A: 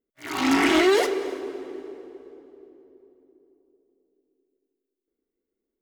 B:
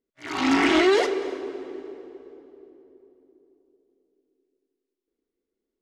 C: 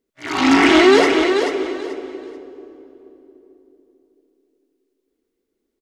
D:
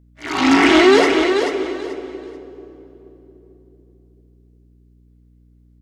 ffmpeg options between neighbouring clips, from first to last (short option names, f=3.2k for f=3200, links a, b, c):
-af "lowpass=6.4k"
-af "aecho=1:1:435|870|1305:0.473|0.109|0.025,volume=7.5dB"
-af "aeval=exprs='val(0)+0.00316*(sin(2*PI*60*n/s)+sin(2*PI*2*60*n/s)/2+sin(2*PI*3*60*n/s)/3+sin(2*PI*4*60*n/s)/4+sin(2*PI*5*60*n/s)/5)':c=same"